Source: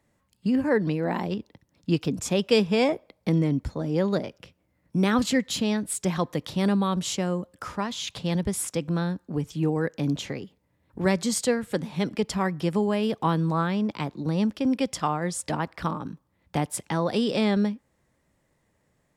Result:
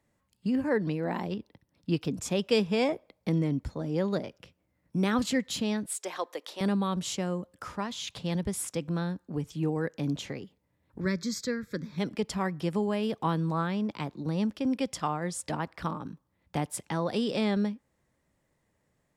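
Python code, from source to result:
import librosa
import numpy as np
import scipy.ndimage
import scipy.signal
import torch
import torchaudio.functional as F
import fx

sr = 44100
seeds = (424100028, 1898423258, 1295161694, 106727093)

y = fx.peak_eq(x, sr, hz=6900.0, db=-9.0, octaves=0.26, at=(1.32, 2.05))
y = fx.highpass(y, sr, hz=400.0, slope=24, at=(5.86, 6.61))
y = fx.fixed_phaser(y, sr, hz=2900.0, stages=6, at=(11.0, 11.98))
y = y * librosa.db_to_amplitude(-4.5)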